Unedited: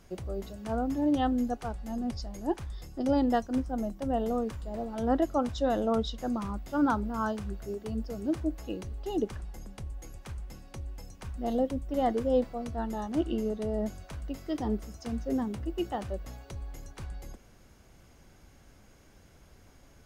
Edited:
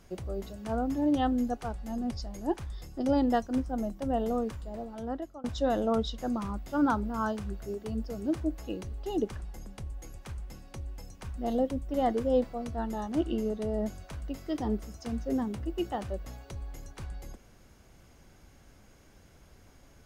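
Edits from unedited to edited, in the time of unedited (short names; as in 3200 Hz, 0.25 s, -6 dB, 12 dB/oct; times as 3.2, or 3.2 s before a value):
4.45–5.44 fade out, to -23.5 dB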